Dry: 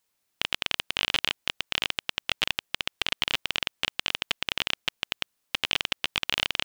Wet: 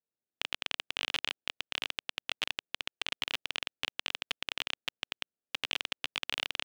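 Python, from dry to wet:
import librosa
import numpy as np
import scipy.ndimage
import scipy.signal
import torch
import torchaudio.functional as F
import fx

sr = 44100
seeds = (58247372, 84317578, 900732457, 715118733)

y = fx.wiener(x, sr, points=41)
y = fx.highpass(y, sr, hz=220.0, slope=6)
y = y * 10.0 ** (-7.0 / 20.0)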